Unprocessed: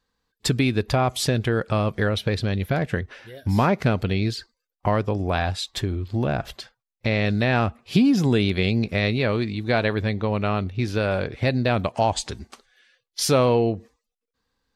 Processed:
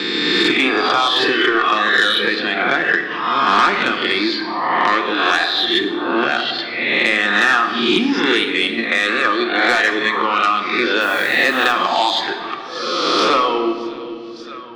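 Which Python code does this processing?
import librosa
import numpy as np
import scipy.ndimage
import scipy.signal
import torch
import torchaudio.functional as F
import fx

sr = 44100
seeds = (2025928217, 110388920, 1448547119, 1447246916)

y = fx.spec_swells(x, sr, rise_s=1.2)
y = fx.cabinet(y, sr, low_hz=250.0, low_slope=24, high_hz=4000.0, hz=(320.0, 600.0, 1200.0, 1800.0, 3400.0), db=(6, -8, 9, 7, 8))
y = fx.echo_feedback(y, sr, ms=588, feedback_pct=21, wet_db=-23.5)
y = fx.dereverb_blind(y, sr, rt60_s=1.6)
y = fx.comb(y, sr, ms=2.7, depth=0.65, at=(1.2, 1.72))
y = 10.0 ** (-12.0 / 20.0) * np.tanh(y / 10.0 ** (-12.0 / 20.0))
y = fx.level_steps(y, sr, step_db=9, at=(8.44, 9.25))
y = fx.tilt_shelf(y, sr, db=-4.0, hz=630.0)
y = fx.quant_dither(y, sr, seeds[0], bits=8, dither='triangular', at=(11.0, 11.71), fade=0.02)
y = fx.room_shoebox(y, sr, seeds[1], volume_m3=950.0, walls='mixed', distance_m=0.91)
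y = fx.band_squash(y, sr, depth_pct=70)
y = F.gain(torch.from_numpy(y), 4.5).numpy()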